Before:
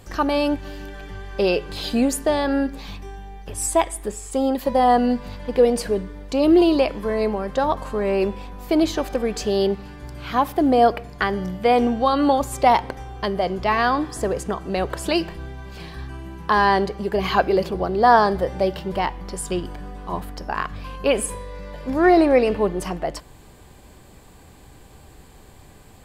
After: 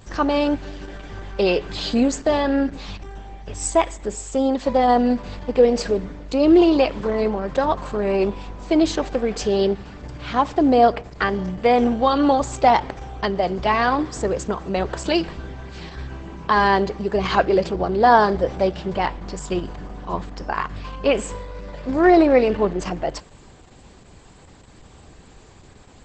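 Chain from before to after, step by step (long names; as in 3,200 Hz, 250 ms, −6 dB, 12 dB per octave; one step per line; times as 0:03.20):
0:17.91–0:18.45: parametric band 9,500 Hz → 1,900 Hz −3 dB 0.27 octaves
level +1.5 dB
Opus 10 kbit/s 48,000 Hz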